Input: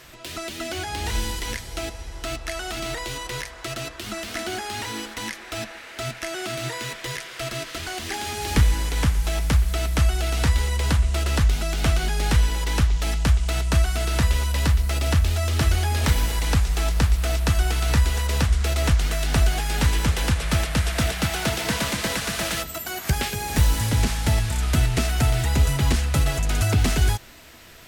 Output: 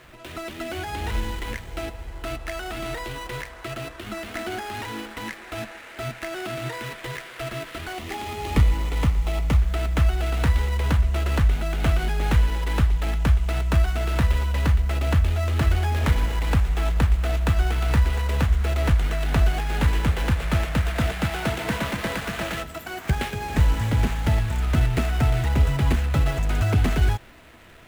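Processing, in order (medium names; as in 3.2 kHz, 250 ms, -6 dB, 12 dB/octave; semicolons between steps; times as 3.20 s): median filter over 9 samples; 7.96–9.59 s: band-stop 1.6 kHz, Q 5.3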